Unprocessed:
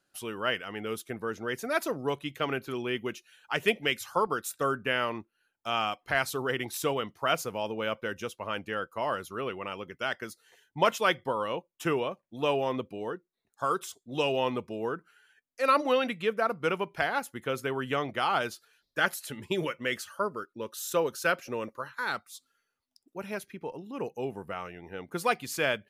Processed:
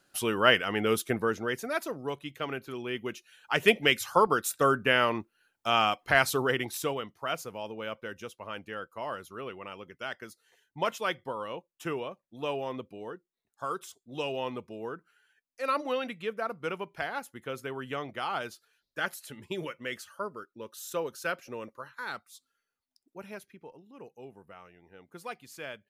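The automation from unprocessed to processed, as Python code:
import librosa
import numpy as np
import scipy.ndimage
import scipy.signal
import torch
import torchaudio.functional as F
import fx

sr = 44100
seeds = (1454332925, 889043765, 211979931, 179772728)

y = fx.gain(x, sr, db=fx.line((1.13, 8.0), (1.82, -4.0), (2.78, -4.0), (3.76, 4.5), (6.37, 4.5), (7.13, -5.5), (23.19, -5.5), (23.91, -13.0)))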